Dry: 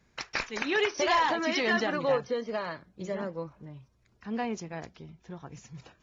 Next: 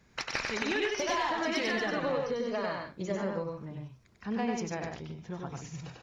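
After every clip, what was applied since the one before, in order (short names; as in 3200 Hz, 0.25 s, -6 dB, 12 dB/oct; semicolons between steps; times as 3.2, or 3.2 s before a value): one diode to ground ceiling -18 dBFS; compressor 6:1, threshold -33 dBFS, peak gain reduction 10.5 dB; on a send: loudspeakers at several distances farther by 33 m -3 dB, 49 m -9 dB; on the sum: gain +3 dB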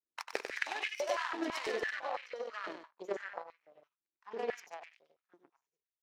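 ending faded out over 1.49 s; power-law curve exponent 2; stepped high-pass 6 Hz 320–2300 Hz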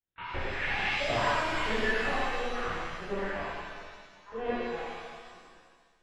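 LPC vocoder at 8 kHz pitch kept; shimmer reverb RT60 1.7 s, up +7 st, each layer -8 dB, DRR -11 dB; gain -3.5 dB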